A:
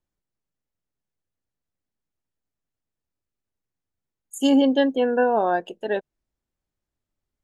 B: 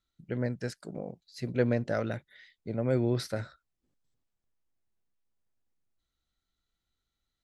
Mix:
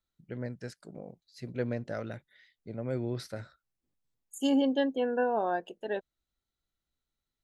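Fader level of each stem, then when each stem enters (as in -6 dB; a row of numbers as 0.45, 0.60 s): -8.5, -6.0 dB; 0.00, 0.00 s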